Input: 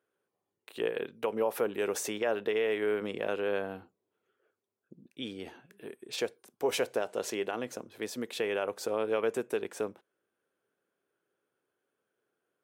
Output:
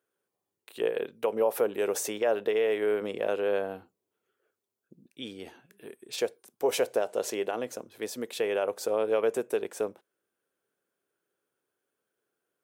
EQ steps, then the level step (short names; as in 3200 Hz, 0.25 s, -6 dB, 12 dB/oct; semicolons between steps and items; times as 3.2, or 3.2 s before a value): dynamic EQ 570 Hz, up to +7 dB, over -43 dBFS, Q 0.97; high shelf 5300 Hz +7.5 dB; -2.0 dB